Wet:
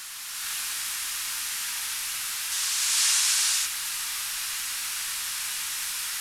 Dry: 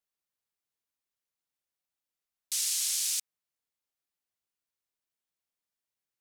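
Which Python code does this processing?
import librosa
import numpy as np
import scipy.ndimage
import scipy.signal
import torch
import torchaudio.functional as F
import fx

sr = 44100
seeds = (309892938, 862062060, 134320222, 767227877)

y = fx.delta_mod(x, sr, bps=64000, step_db=-33.5)
y = scipy.signal.sosfilt(scipy.signal.butter(4, 1100.0, 'highpass', fs=sr, output='sos'), y)
y = fx.dmg_noise_colour(y, sr, seeds[0], colour='pink', level_db=-68.0)
y = fx.rev_gated(y, sr, seeds[1], gate_ms=490, shape='rising', drr_db=-6.5)
y = y * librosa.db_to_amplitude(2.5)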